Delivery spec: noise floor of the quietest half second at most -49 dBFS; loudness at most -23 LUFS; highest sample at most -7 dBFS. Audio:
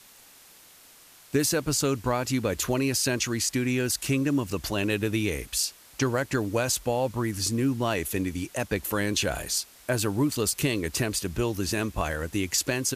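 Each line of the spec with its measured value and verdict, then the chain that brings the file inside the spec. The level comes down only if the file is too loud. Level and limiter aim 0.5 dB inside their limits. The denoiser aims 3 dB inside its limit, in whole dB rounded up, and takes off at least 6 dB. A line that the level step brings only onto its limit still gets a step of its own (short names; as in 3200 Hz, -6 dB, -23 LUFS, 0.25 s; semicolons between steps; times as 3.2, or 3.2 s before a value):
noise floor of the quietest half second -53 dBFS: OK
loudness -27.0 LUFS: OK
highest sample -12.5 dBFS: OK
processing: none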